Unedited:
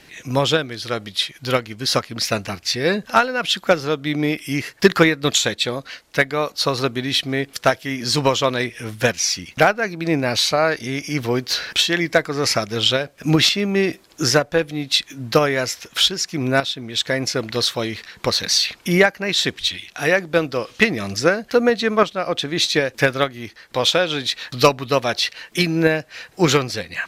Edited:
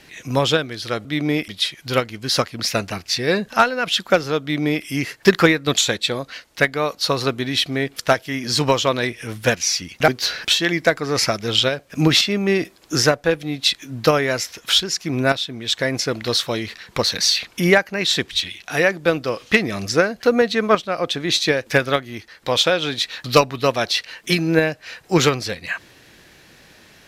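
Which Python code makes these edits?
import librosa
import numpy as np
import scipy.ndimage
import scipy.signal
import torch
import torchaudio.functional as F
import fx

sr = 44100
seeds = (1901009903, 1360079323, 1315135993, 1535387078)

y = fx.edit(x, sr, fx.duplicate(start_s=3.99, length_s=0.43, to_s=1.05),
    fx.cut(start_s=9.65, length_s=1.71), tone=tone)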